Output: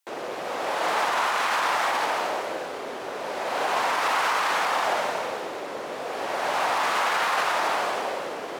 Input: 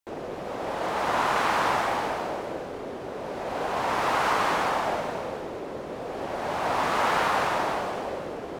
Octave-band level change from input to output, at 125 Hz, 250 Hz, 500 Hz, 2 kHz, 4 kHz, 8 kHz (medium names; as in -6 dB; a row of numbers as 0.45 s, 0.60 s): -11.0 dB, -5.0 dB, 0.0 dB, +3.5 dB, +5.0 dB, +5.5 dB